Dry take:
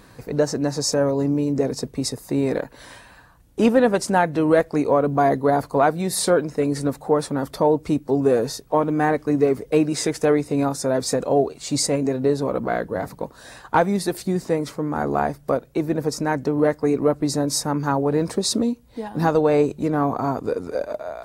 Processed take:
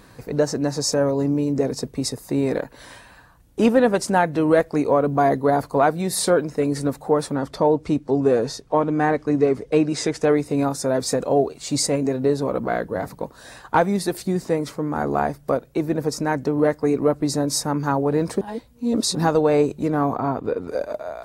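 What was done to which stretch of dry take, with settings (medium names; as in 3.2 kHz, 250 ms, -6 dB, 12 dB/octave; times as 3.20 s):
7.36–10.30 s: low-pass 7.4 kHz
18.41–19.15 s: reverse
20.16–20.68 s: high-order bell 8 kHz -13 dB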